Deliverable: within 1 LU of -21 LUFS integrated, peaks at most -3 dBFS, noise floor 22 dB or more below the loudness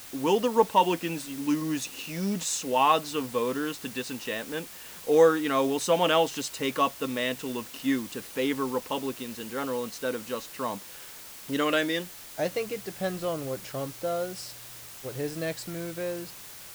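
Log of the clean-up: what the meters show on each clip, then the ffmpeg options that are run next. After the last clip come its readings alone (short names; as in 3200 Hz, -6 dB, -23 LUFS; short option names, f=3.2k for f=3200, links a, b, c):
noise floor -45 dBFS; noise floor target -51 dBFS; loudness -28.5 LUFS; peak -9.0 dBFS; loudness target -21.0 LUFS
-> -af "afftdn=nr=6:nf=-45"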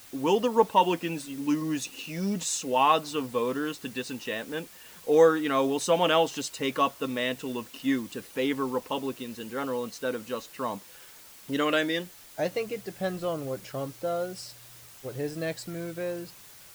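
noise floor -50 dBFS; noise floor target -51 dBFS
-> -af "afftdn=nr=6:nf=-50"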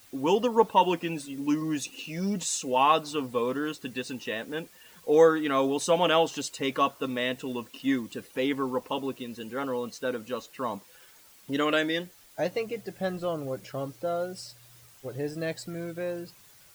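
noise floor -55 dBFS; loudness -28.5 LUFS; peak -8.5 dBFS; loudness target -21.0 LUFS
-> -af "volume=7.5dB,alimiter=limit=-3dB:level=0:latency=1"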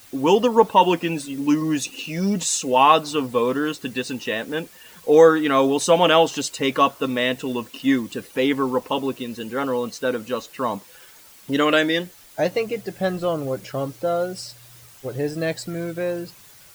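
loudness -21.5 LUFS; peak -3.0 dBFS; noise floor -48 dBFS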